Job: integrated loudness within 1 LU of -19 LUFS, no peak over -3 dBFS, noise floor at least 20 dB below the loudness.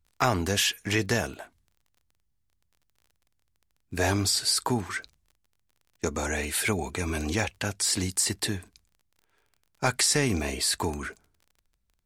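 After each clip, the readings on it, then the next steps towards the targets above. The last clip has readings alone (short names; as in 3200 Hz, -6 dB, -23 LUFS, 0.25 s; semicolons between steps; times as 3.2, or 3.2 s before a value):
ticks 25/s; loudness -27.0 LUFS; peak -9.0 dBFS; loudness target -19.0 LUFS
-> de-click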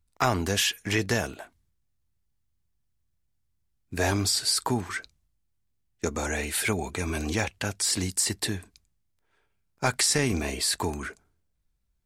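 ticks 0.083/s; loudness -27.0 LUFS; peak -9.0 dBFS; loudness target -19.0 LUFS
-> gain +8 dB; limiter -3 dBFS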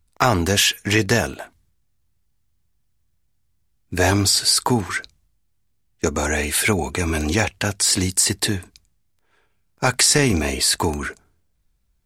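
loudness -19.0 LUFS; peak -3.0 dBFS; noise floor -66 dBFS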